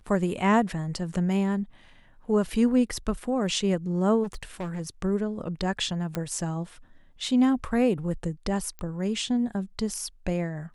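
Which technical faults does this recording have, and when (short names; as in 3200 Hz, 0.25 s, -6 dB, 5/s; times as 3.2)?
4.23–4.81 clipped -29 dBFS
6.15 pop -15 dBFS
8.79 pop -23 dBFS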